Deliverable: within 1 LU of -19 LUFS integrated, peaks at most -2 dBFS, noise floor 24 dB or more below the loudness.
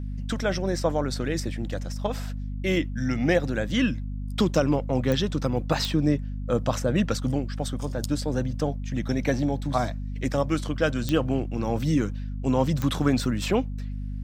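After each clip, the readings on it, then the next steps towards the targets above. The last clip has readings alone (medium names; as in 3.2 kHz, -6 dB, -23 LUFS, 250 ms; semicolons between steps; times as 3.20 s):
clicks found 4; hum 50 Hz; highest harmonic 250 Hz; hum level -29 dBFS; loudness -26.5 LUFS; peak level -8.0 dBFS; loudness target -19.0 LUFS
-> de-click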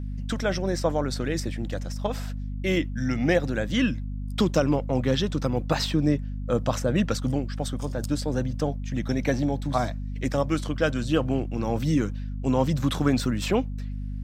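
clicks found 0; hum 50 Hz; highest harmonic 250 Hz; hum level -29 dBFS
-> de-hum 50 Hz, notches 5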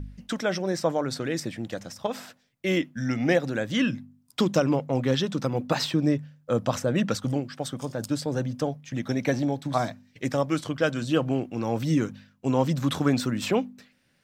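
hum not found; loudness -27.0 LUFS; peak level -8.5 dBFS; loudness target -19.0 LUFS
-> trim +8 dB; peak limiter -2 dBFS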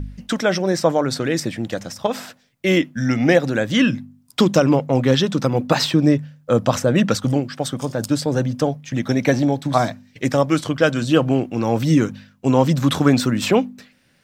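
loudness -19.5 LUFS; peak level -2.0 dBFS; noise floor -58 dBFS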